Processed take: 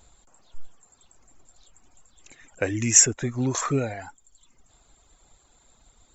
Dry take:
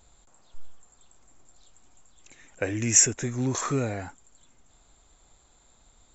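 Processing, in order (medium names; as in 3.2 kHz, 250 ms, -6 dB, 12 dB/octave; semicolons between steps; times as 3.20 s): reverb removal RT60 0.79 s; trim +3 dB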